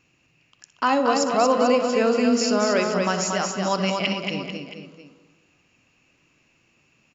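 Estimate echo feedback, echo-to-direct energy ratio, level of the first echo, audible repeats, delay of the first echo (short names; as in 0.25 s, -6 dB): no steady repeat, -3.0 dB, -15.0 dB, 5, 62 ms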